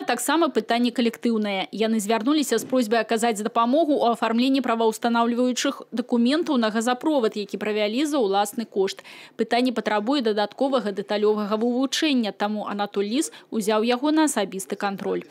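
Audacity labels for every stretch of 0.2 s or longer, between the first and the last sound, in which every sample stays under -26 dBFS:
8.990000	9.390000	silence
13.270000	13.530000	silence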